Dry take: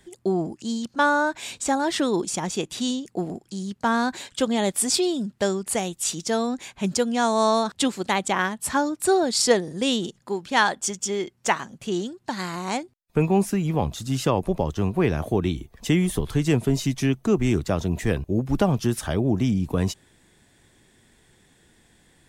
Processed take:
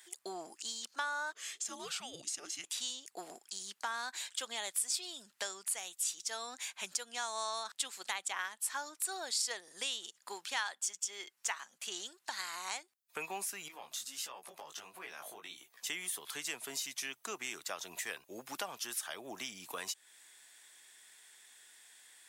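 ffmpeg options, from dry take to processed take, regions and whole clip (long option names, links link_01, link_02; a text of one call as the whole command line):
ffmpeg -i in.wav -filter_complex "[0:a]asettb=1/sr,asplit=3[link_01][link_02][link_03];[link_01]atrim=end=1.324[link_04];[link_02]atrim=start=1.32:end=2.64,asetpts=PTS-STARTPTS,afade=type=in:duration=0.004:curve=qsin,afade=type=out:start_time=1.316:duration=0.004:curve=qsin,highshelf=frequency=1600:width_type=q:width=1.5:gain=-6,bandreject=frequency=1500:width=6,afreqshift=-500[link_05];[link_03]atrim=start=2.636[link_06];[link_04][link_05]acrossfade=duration=0.004:curve1=hsin:curve2=qsin[link_07];[link_07][link_06]acrossfade=duration=0.004:curve1=qsin:curve2=hsin,asettb=1/sr,asplit=3[link_08][link_09][link_10];[link_08]atrim=end=13.684[link_11];[link_09]atrim=start=13.68:end=15.87,asetpts=PTS-STARTPTS,afade=type=in:duration=0.004:curve=qsin,afade=type=out:start_time=2.186:duration=0.004:curve=qsin,acompressor=threshold=-29dB:ratio=4:attack=3.2:release=140:knee=1:detection=peak,flanger=delay=15.5:depth=4.1:speed=1.5[link_12];[link_10]atrim=start=15.866[link_13];[link_11][link_12]acrossfade=duration=0.004:curve1=hsin:curve2=qsin[link_14];[link_14][link_13]acrossfade=duration=0.004:curve1=qsin:curve2=hsin,highpass=1200,highshelf=frequency=6500:gain=8,acompressor=threshold=-40dB:ratio=2.5" out.wav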